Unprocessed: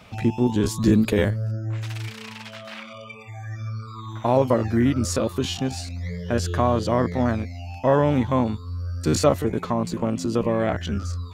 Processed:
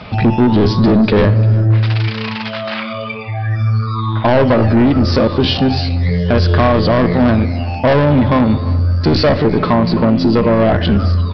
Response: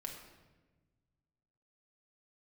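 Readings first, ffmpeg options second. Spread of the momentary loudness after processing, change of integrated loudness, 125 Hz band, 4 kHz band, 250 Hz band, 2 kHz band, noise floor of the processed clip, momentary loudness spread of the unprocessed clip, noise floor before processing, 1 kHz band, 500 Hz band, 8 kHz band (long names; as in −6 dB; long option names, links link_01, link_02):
9 LU, +10.0 dB, +12.5 dB, +12.0 dB, +10.5 dB, +12.0 dB, −23 dBFS, 16 LU, −40 dBFS, +9.0 dB, +9.0 dB, below −10 dB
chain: -filter_complex "[0:a]equalizer=frequency=2800:width_type=o:width=1.4:gain=-3,aresample=11025,asoftclip=type=tanh:threshold=-21dB,aresample=44100,aecho=1:1:349|698|1047:0.0794|0.0357|0.0161,asplit=2[link_01][link_02];[1:a]atrim=start_sample=2205[link_03];[link_02][link_03]afir=irnorm=-1:irlink=0,volume=-4.5dB[link_04];[link_01][link_04]amix=inputs=2:normalize=0,alimiter=level_in=18.5dB:limit=-1dB:release=50:level=0:latency=1,volume=-4dB" -ar 32000 -c:a libmp3lame -b:a 96k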